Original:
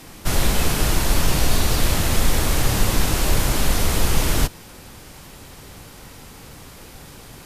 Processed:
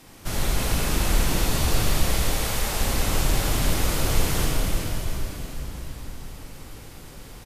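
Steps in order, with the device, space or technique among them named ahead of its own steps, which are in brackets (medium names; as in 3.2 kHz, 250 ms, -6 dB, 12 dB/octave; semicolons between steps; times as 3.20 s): 2.03–2.81 s: Chebyshev high-pass 420 Hz, order 5; cave (delay 355 ms -9.5 dB; reverberation RT60 4.7 s, pre-delay 26 ms, DRR -2 dB); trim -8 dB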